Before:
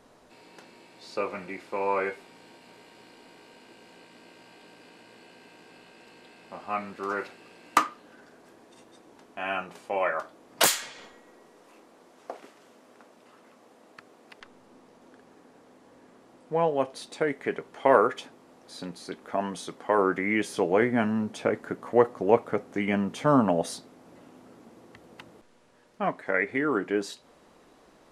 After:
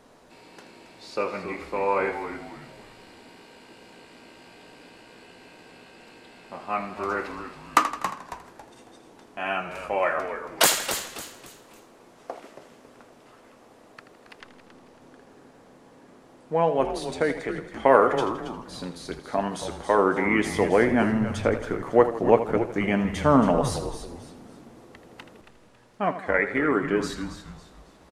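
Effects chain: 17.31–17.73 s: compression, threshold -31 dBFS, peak gain reduction 8.5 dB; frequency-shifting echo 275 ms, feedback 34%, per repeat -120 Hz, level -10 dB; modulated delay 81 ms, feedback 52%, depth 75 cents, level -12 dB; trim +2.5 dB

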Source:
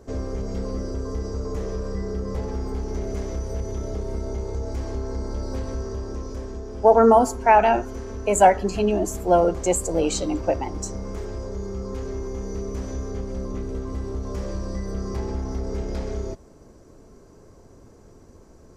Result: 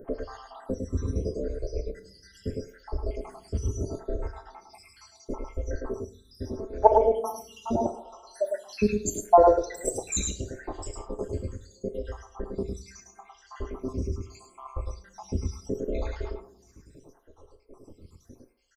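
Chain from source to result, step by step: random holes in the spectrogram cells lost 83%; 7.76–8.69 s: high-pass 1.2 kHz 12 dB/octave; on a send: delay 105 ms -4 dB; on the sum: two-slope reverb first 0.49 s, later 2.1 s, from -19 dB, DRR 7 dB; lamp-driven phase shifter 0.76 Hz; trim +5 dB

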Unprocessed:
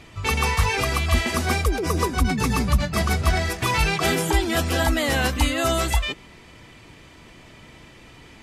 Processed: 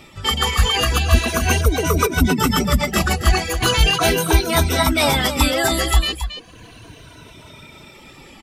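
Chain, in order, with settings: drifting ripple filter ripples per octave 1.7, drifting -0.37 Hz, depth 12 dB; reverb removal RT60 0.86 s; on a send: delay 273 ms -10 dB; on the sum: level rider gain up to 3.5 dB; formant shift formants +3 st; trim +1.5 dB

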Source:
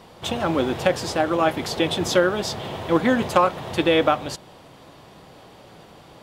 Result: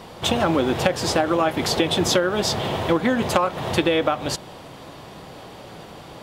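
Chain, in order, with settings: compression 12:1, threshold -22 dBFS, peak gain reduction 11 dB; trim +6.5 dB

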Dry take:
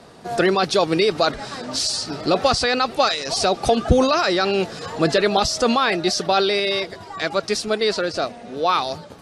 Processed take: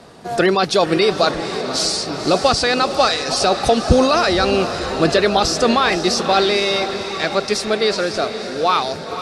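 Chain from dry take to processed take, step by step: echo that smears into a reverb 508 ms, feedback 60%, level -10 dB; trim +2.5 dB

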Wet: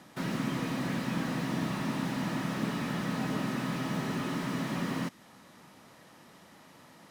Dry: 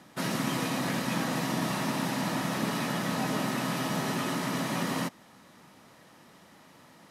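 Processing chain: dynamic bell 720 Hz, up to -6 dB, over -47 dBFS, Q 0.95; slew-rate limiter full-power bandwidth 27 Hz

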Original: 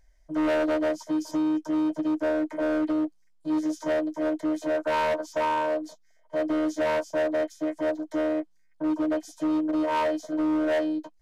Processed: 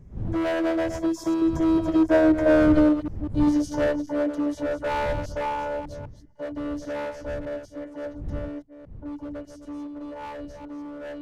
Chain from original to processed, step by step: chunks repeated in reverse 188 ms, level -9 dB; wind noise 110 Hz -35 dBFS; Doppler pass-by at 2.56 s, 22 m/s, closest 20 m; trim +7 dB

